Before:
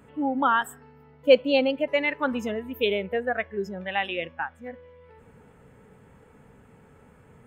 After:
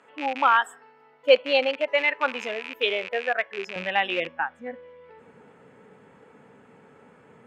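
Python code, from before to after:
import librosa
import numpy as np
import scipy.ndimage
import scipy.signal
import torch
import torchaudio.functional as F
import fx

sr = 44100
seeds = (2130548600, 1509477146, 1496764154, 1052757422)

y = fx.rattle_buzz(x, sr, strikes_db=-41.0, level_db=-25.0)
y = fx.bandpass_edges(y, sr, low_hz=fx.steps((0.0, 590.0), (3.76, 220.0)), high_hz=6000.0)
y = y * librosa.db_to_amplitude(3.5)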